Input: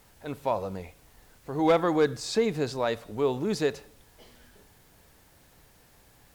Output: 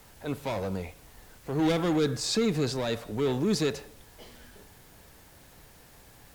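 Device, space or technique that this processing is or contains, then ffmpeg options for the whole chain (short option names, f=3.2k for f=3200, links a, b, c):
one-band saturation: -filter_complex "[0:a]acrossover=split=320|2600[a][b][c];[b]asoftclip=type=tanh:threshold=-36dB[d];[a][d][c]amix=inputs=3:normalize=0,volume=4.5dB"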